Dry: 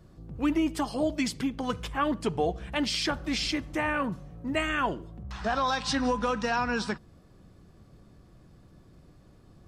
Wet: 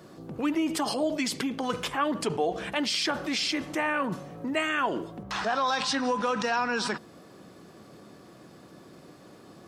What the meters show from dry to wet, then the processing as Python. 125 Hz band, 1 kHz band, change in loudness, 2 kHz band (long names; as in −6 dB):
−4.0 dB, +1.5 dB, +1.0 dB, +1.5 dB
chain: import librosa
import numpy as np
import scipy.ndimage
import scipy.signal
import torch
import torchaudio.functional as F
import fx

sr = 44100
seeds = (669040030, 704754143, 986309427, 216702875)

p1 = scipy.signal.sosfilt(scipy.signal.butter(2, 270.0, 'highpass', fs=sr, output='sos'), x)
p2 = fx.over_compress(p1, sr, threshold_db=-41.0, ratio=-1.0)
y = p1 + (p2 * 10.0 ** (0.0 / 20.0))